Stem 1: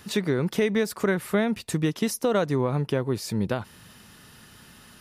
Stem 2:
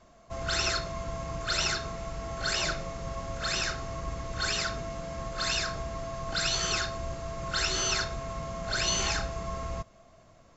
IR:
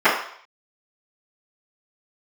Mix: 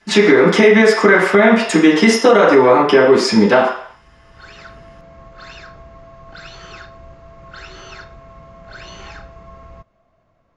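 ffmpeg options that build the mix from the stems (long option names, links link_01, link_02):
-filter_complex "[0:a]highpass=130,agate=range=-22dB:threshold=-37dB:ratio=16:detection=peak,lowpass=frequency=7400:width=0.5412,lowpass=frequency=7400:width=1.3066,volume=2.5dB,asplit=3[link_01][link_02][link_03];[link_02]volume=-7.5dB[link_04];[1:a]lowpass=1900,volume=-4.5dB[link_05];[link_03]apad=whole_len=466058[link_06];[link_05][link_06]sidechaincompress=threshold=-38dB:ratio=8:attack=16:release=806[link_07];[2:a]atrim=start_sample=2205[link_08];[link_04][link_08]afir=irnorm=-1:irlink=0[link_09];[link_01][link_07][link_09]amix=inputs=3:normalize=0,highshelf=frequency=3100:gain=10,alimiter=limit=-1dB:level=0:latency=1:release=87"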